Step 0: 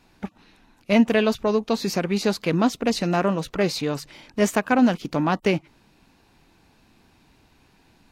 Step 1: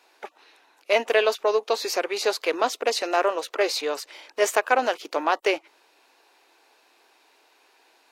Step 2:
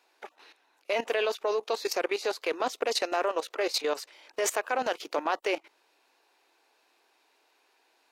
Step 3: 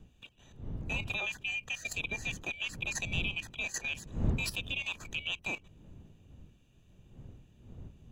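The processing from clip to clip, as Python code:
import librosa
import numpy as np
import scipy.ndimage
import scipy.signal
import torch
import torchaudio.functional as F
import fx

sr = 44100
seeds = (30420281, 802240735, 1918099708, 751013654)

y1 = scipy.signal.sosfilt(scipy.signal.cheby2(4, 40, 200.0, 'highpass', fs=sr, output='sos'), x)
y1 = y1 * librosa.db_to_amplitude(2.0)
y2 = fx.level_steps(y1, sr, step_db=14)
y2 = y2 * librosa.db_to_amplitude(1.5)
y3 = fx.band_swap(y2, sr, width_hz=2000)
y3 = fx.dmg_wind(y3, sr, seeds[0], corner_hz=140.0, level_db=-34.0)
y3 = y3 * librosa.db_to_amplitude(-8.0)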